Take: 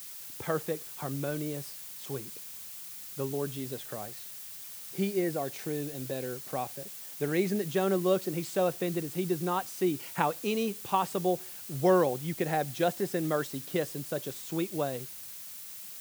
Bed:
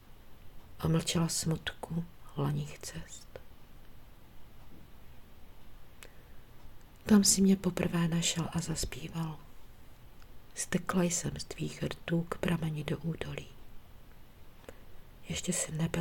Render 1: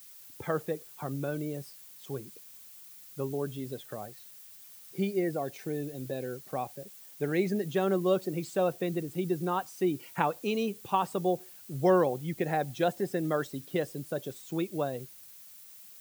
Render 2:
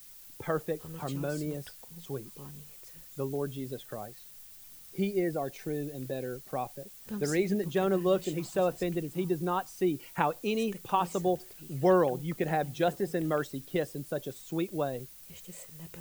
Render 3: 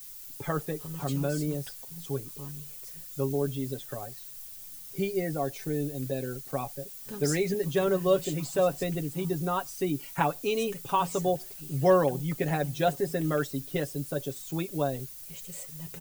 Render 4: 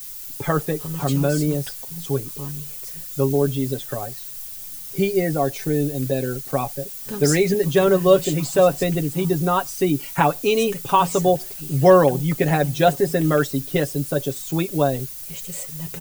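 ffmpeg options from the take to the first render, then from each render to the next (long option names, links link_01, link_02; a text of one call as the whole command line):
ffmpeg -i in.wav -af "afftdn=noise_reduction=9:noise_floor=-44" out.wav
ffmpeg -i in.wav -i bed.wav -filter_complex "[1:a]volume=-15dB[link_01];[0:a][link_01]amix=inputs=2:normalize=0" out.wav
ffmpeg -i in.wav -af "bass=frequency=250:gain=2,treble=frequency=4000:gain=5,aecho=1:1:7.2:0.65" out.wav
ffmpeg -i in.wav -af "volume=9.5dB,alimiter=limit=-2dB:level=0:latency=1" out.wav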